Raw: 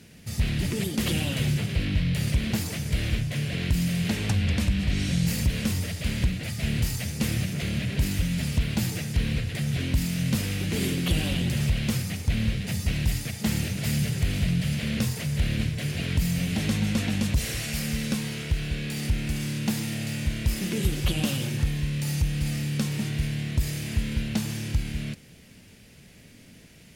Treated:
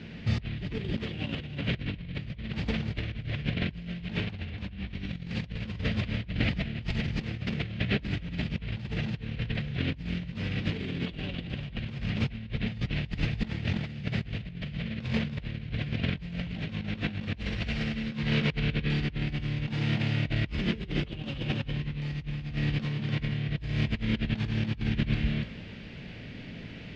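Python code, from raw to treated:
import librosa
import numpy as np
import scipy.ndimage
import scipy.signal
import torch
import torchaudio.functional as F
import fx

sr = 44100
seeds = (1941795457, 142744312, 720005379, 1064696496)

y = fx.comb_fb(x, sr, f0_hz=56.0, decay_s=0.81, harmonics='all', damping=0.0, mix_pct=60)
y = y + 10.0 ** (-5.0 / 20.0) * np.pad(y, (int(293 * sr / 1000.0), 0))[:len(y)]
y = fx.over_compress(y, sr, threshold_db=-37.0, ratio=-0.5)
y = scipy.signal.sosfilt(scipy.signal.butter(4, 3700.0, 'lowpass', fs=sr, output='sos'), y)
y = y * 10.0 ** (7.0 / 20.0)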